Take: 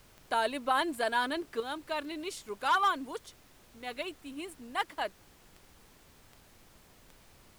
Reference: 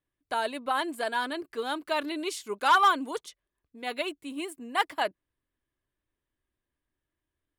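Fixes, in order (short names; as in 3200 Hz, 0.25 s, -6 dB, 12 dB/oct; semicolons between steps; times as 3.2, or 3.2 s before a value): de-click; noise print and reduce 27 dB; gain correction +6 dB, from 1.6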